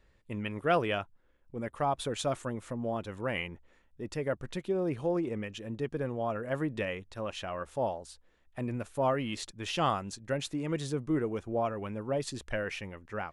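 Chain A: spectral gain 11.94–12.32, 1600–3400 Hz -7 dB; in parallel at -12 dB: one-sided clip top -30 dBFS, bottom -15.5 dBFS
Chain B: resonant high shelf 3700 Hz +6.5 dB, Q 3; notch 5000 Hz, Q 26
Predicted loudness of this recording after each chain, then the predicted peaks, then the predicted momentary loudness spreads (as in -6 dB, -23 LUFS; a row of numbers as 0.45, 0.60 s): -32.5, -33.5 LUFS; -13.5, -14.0 dBFS; 10, 10 LU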